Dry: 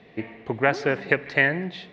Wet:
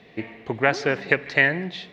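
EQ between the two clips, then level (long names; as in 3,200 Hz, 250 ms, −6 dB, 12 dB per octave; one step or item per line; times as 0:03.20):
high-shelf EQ 3,500 Hz +8 dB
0.0 dB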